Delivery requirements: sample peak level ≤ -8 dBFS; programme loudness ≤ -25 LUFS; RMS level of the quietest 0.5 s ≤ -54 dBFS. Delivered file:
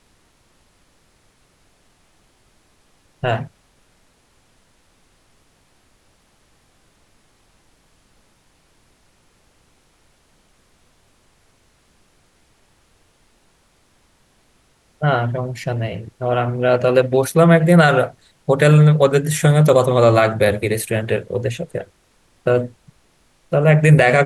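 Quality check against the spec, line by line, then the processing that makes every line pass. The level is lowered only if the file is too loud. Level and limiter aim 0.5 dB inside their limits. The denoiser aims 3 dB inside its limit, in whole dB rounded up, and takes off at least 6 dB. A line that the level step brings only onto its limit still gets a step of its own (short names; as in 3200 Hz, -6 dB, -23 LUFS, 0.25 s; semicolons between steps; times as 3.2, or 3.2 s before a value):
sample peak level -2.0 dBFS: fail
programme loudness -16.0 LUFS: fail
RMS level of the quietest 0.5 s -58 dBFS: OK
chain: gain -9.5 dB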